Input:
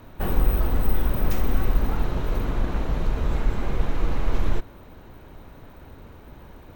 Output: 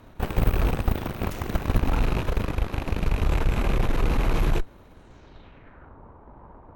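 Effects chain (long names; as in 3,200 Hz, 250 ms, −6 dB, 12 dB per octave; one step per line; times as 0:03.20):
loose part that buzzes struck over −30 dBFS, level −29 dBFS
low-pass filter sweep 12,000 Hz → 1,000 Hz, 0:04.91–0:05.98
harmonic generator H 4 −15 dB, 6 −7 dB, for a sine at −7 dBFS
level −4 dB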